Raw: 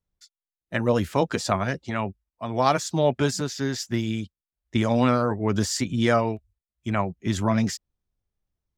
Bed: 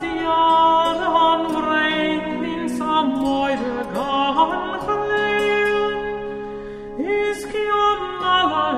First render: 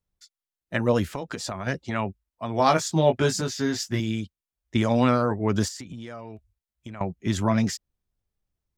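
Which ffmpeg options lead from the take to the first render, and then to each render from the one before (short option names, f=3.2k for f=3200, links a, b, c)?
-filter_complex "[0:a]asettb=1/sr,asplit=3[a][b][c];[a]atrim=end=1.154[d];[b]atrim=start=1.15:end=1.67,asetpts=PTS-STARTPTS,afade=t=in:d=0.004:c=qsin,afade=t=out:st=0.516:d=0.004:c=qsin,acompressor=threshold=-28dB:ratio=6:attack=3.2:release=140:knee=1:detection=peak[e];[c]atrim=start=1.666[f];[d][e]acrossfade=d=0.004:c1=hsin:c2=qsin[g];[g][f]acrossfade=d=0.004:c1=qsin:c2=hsin,asettb=1/sr,asplit=3[h][i][j];[h]atrim=end=2.574[k];[i]atrim=start=2.57:end=4,asetpts=PTS-STARTPTS,afade=t=in:d=0.004:c=qsin,afade=t=out:st=1.426:d=0.004:c=qsin,asplit=2[l][m];[m]adelay=19,volume=-5dB[n];[l][n]amix=inputs=2:normalize=0,atrim=end_sample=63063[o];[j]atrim=start=3.996[p];[k][o]acrossfade=d=0.004:c1=hsin:c2=qsin[q];[q][p]acrossfade=d=0.004:c1=qsin:c2=hsin,asettb=1/sr,asplit=3[r][s][t];[r]atrim=end=5.684[u];[s]atrim=start=5.68:end=7.01,asetpts=PTS-STARTPTS,afade=t=in:d=0.004:c=qsin,afade=t=out:st=1.326:d=0.004:c=qsin,acompressor=threshold=-34dB:ratio=16:attack=3.2:release=140:knee=1:detection=peak[v];[t]atrim=start=7.006[w];[u][v]acrossfade=d=0.004:c1=hsin:c2=qsin[x];[x][w]acrossfade=d=0.004:c1=qsin:c2=hsin"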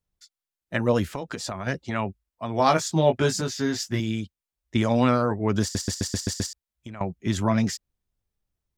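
-filter_complex "[0:a]asplit=8[a][b][c][d][e][f][g][h];[a]atrim=end=5.752[i];[b]atrim=start=5.618:end=5.752[j];[c]atrim=start=5.618:end=5.752[k];[d]atrim=start=5.618:end=5.752[l];[e]atrim=start=5.618:end=5.752[m];[f]atrim=start=5.618:end=5.752[n];[g]atrim=start=5.618:end=5.752[o];[h]atrim=start=6.528[p];[i][j]acrossfade=d=0.004:c1=hsin:c2=hsin[q];[q][k]acrossfade=d=0.004:c1=hsin:c2=hsin[r];[r][l]acrossfade=d=0.004:c1=hsin:c2=hsin[s];[s][m]acrossfade=d=0.004:c1=hsin:c2=hsin[t];[t][n]acrossfade=d=0.004:c1=hsin:c2=hsin[u];[u][o]acrossfade=d=0.004:c1=hsin:c2=hsin[v];[v][p]acrossfade=d=0.004:c1=hsin:c2=hsin"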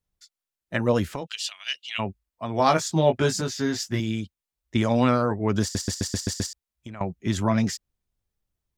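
-filter_complex "[0:a]asplit=3[a][b][c];[a]afade=t=out:st=1.26:d=0.02[d];[b]highpass=f=2.9k:t=q:w=9.2,afade=t=in:st=1.26:d=0.02,afade=t=out:st=1.98:d=0.02[e];[c]afade=t=in:st=1.98:d=0.02[f];[d][e][f]amix=inputs=3:normalize=0"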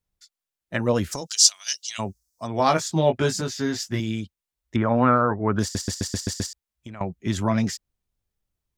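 -filter_complex "[0:a]asplit=3[a][b][c];[a]afade=t=out:st=1.11:d=0.02[d];[b]highshelf=f=4k:t=q:w=3:g=13.5,afade=t=in:st=1.11:d=0.02,afade=t=out:st=2.46:d=0.02[e];[c]afade=t=in:st=2.46:d=0.02[f];[d][e][f]amix=inputs=3:normalize=0,asettb=1/sr,asplit=3[g][h][i];[g]atrim=end=4.764[j];[h]atrim=start=4.76:end=5.59,asetpts=PTS-STARTPTS,afade=t=in:d=0.004:c=qsin,afade=t=out:st=0.826:d=0.004:c=qsin,lowpass=f=1.4k:t=q:w=2.2[k];[i]atrim=start=5.586[l];[j][k]acrossfade=d=0.004:c1=hsin:c2=qsin[m];[m][l]acrossfade=d=0.004:c1=qsin:c2=hsin"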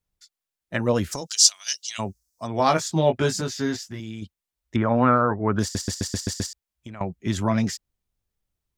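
-filter_complex "[0:a]asettb=1/sr,asplit=3[a][b][c];[a]atrim=end=3.764[d];[b]atrim=start=3.76:end=4.22,asetpts=PTS-STARTPTS,afade=t=in:d=0.004:c=qsin,afade=t=out:st=0.456:d=0.004:c=qsin,acompressor=threshold=-37dB:ratio=2:attack=3.2:release=140:knee=1:detection=peak[e];[c]atrim=start=4.216[f];[d][e]acrossfade=d=0.004:c1=hsin:c2=qsin[g];[g][f]acrossfade=d=0.004:c1=qsin:c2=hsin"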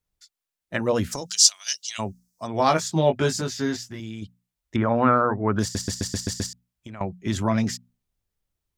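-af "bandreject=f=60:t=h:w=6,bandreject=f=120:t=h:w=6,bandreject=f=180:t=h:w=6,bandreject=f=240:t=h:w=6"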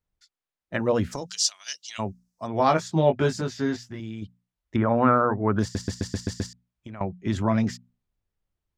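-af "lowpass=f=2.3k:p=1"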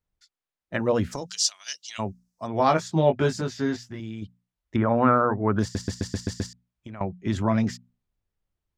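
-af anull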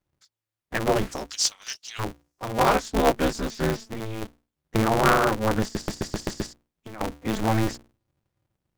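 -af "aphaser=in_gain=1:out_gain=1:delay=3.9:decay=0.31:speed=0.24:type=sinusoidal,aeval=exprs='val(0)*sgn(sin(2*PI*110*n/s))':c=same"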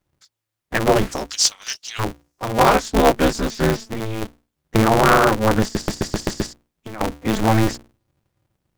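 -af "volume=6.5dB,alimiter=limit=-3dB:level=0:latency=1"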